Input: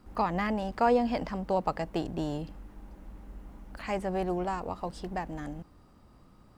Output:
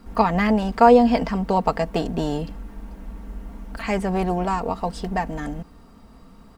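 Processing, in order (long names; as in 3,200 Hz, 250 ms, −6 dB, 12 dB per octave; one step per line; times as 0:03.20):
comb filter 4.4 ms, depth 56%
level +8.5 dB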